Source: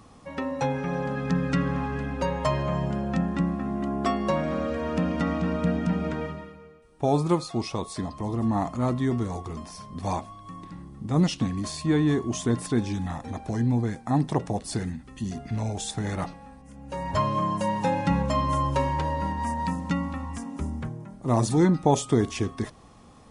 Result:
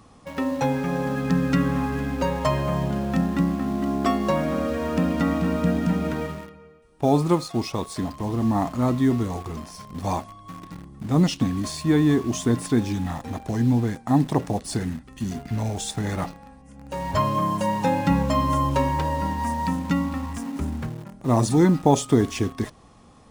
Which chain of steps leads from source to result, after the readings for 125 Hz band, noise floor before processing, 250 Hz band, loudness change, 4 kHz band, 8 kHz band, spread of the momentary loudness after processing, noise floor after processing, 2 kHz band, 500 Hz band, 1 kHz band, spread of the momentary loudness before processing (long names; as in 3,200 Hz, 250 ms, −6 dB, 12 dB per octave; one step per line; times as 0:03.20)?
+2.5 dB, −50 dBFS, +4.0 dB, +3.5 dB, +3.0 dB, +3.0 dB, 12 LU, −50 dBFS, +2.5 dB, +2.5 dB, +2.5 dB, 12 LU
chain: dynamic equaliser 270 Hz, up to +5 dB, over −42 dBFS, Q 7.3
in parallel at −9.5 dB: bit reduction 6 bits